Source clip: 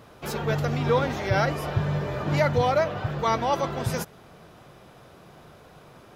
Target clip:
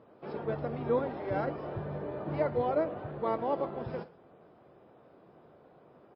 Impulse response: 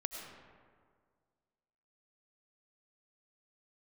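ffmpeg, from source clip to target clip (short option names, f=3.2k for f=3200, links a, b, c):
-filter_complex "[0:a]asplit=3[a][b][c];[b]asetrate=22050,aresample=44100,atempo=2,volume=-9dB[d];[c]asetrate=33038,aresample=44100,atempo=1.33484,volume=-15dB[e];[a][d][e]amix=inputs=3:normalize=0,bandpass=f=440:t=q:w=0.82:csg=0,aecho=1:1:112:0.1,volume=-5dB" -ar 12000 -c:a libmp3lame -b:a 24k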